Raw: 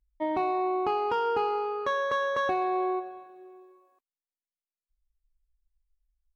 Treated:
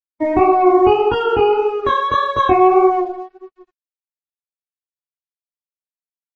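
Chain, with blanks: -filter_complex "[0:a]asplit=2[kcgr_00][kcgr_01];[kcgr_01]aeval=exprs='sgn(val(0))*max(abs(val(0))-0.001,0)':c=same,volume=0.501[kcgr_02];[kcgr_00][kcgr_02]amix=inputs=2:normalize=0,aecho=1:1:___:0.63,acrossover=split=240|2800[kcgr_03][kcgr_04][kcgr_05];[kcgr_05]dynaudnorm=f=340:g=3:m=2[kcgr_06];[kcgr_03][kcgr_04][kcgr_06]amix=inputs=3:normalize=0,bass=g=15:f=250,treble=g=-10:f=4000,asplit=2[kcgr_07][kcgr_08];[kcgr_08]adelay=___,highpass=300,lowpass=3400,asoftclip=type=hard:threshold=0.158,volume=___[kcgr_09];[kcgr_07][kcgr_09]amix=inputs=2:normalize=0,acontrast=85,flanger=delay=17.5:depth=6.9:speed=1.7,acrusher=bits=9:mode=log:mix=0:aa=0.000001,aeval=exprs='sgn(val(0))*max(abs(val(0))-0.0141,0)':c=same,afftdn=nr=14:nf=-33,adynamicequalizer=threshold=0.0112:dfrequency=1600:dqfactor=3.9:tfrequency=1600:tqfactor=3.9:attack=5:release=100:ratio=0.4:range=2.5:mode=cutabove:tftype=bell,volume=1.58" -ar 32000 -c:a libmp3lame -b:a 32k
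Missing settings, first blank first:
2.8, 260, 0.0562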